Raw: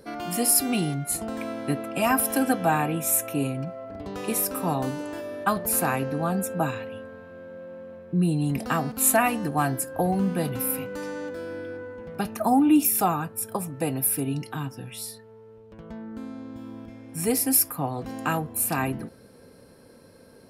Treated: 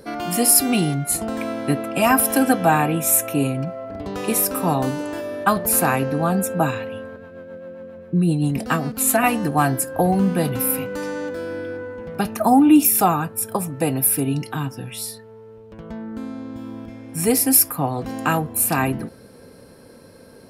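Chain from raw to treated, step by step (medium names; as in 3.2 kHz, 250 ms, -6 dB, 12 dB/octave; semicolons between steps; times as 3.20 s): 7.16–9.24 s: rotary cabinet horn 7.5 Hz; trim +6 dB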